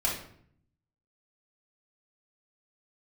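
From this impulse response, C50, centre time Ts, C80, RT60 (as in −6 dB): 5.0 dB, 34 ms, 9.0 dB, 0.60 s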